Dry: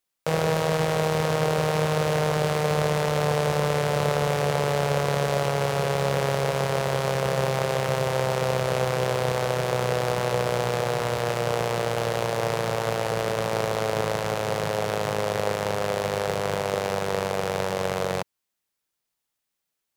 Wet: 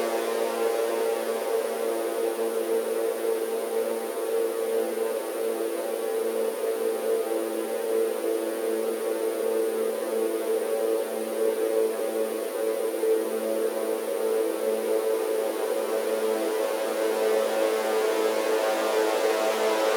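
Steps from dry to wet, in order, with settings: time-frequency box 12.47–13.91 s, 550–8600 Hz -13 dB; Paulstretch 15×, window 1.00 s, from 12.62 s; brick-wall FIR high-pass 230 Hz; trim +4 dB

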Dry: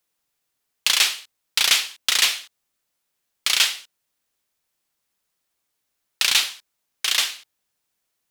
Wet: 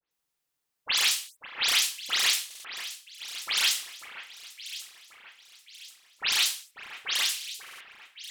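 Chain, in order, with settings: delay that grows with frequency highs late, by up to 111 ms; echo whose repeats swap between lows and highs 543 ms, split 2.3 kHz, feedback 63%, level -10 dB; buffer glitch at 2.46/7.62 s, samples 2048, times 3; trim -5.5 dB

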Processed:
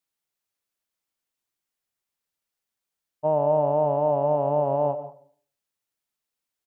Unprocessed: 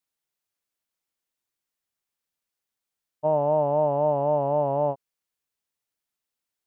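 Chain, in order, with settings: delay 167 ms -23.5 dB; on a send at -12 dB: reverberation RT60 0.50 s, pre-delay 85 ms

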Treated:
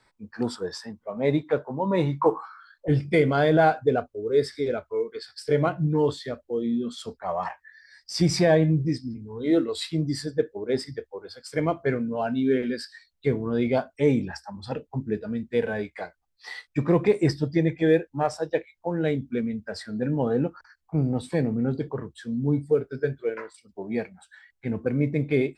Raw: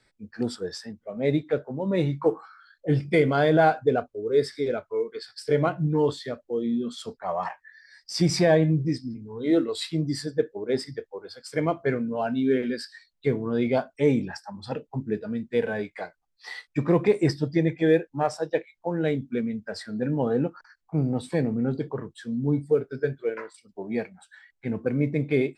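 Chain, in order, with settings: peaking EQ 990 Hz +13 dB 0.59 oct, from 2.88 s 67 Hz

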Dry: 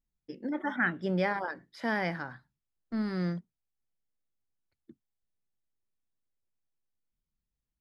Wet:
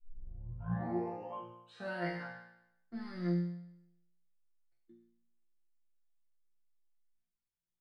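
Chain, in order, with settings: tape start-up on the opening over 2.19 s; chord resonator A#2 fifth, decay 0.79 s; trim +10.5 dB

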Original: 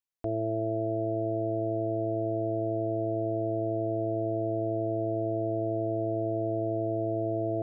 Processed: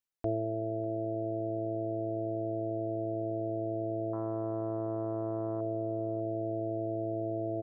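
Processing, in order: 4.13–5.61 s: self-modulated delay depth 0.12 ms; reverb removal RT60 1.1 s; on a send: delay 598 ms -19 dB

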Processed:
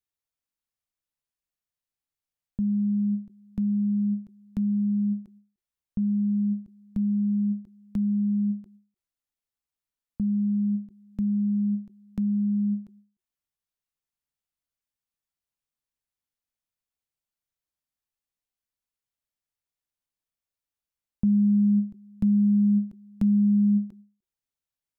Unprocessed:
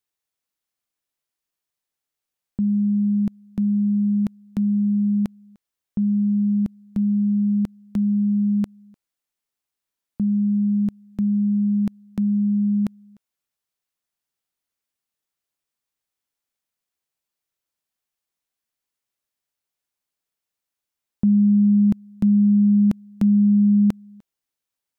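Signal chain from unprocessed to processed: bass shelf 130 Hz +11.5 dB; band-stop 370 Hz, Q 12; endings held to a fixed fall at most 180 dB/s; trim -8 dB

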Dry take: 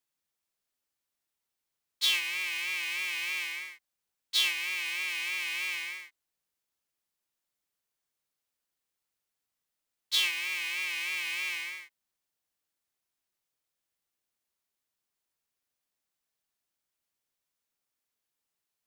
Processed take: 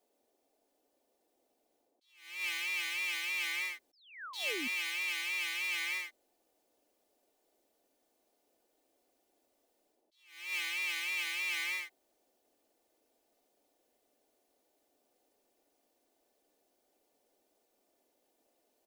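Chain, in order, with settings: comb 3.4 ms, depth 68%; in parallel at -2 dB: gain riding; on the sum: painted sound fall, 3.93–4.68 s, 230–5600 Hz -32 dBFS; reverse; compression 10:1, threshold -30 dBFS, peak gain reduction 15.5 dB; reverse; band noise 250–770 Hz -77 dBFS; attacks held to a fixed rise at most 100 dB/s; trim -2 dB

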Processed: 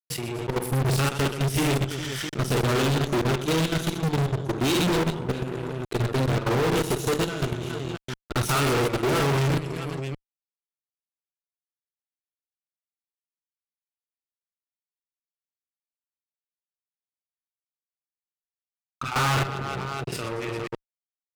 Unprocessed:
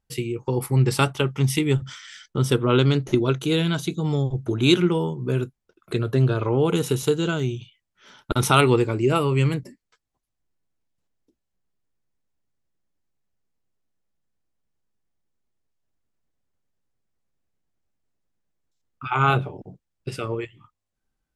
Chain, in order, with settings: reverse bouncing-ball echo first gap 50 ms, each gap 1.5×, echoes 5; level held to a coarse grid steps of 21 dB; fuzz box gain 37 dB, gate -46 dBFS; trim -8 dB

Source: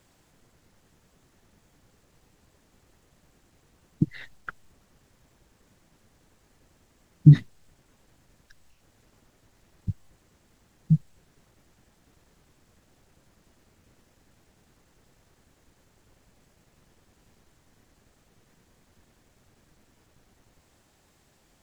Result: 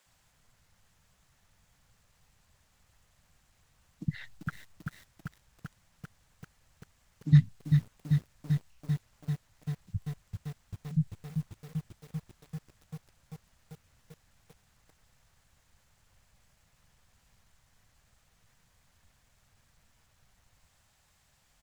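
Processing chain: peaking EQ 350 Hz -14.5 dB 1.3 oct; bands offset in time highs, lows 60 ms, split 250 Hz; bit-crushed delay 391 ms, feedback 80%, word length 8-bit, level -5 dB; trim -2.5 dB

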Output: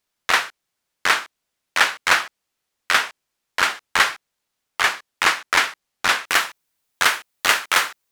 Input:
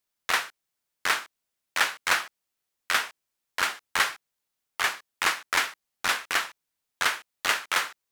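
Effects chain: treble shelf 9.7 kHz -8.5 dB, from 6.28 s +2 dB; trim +7.5 dB

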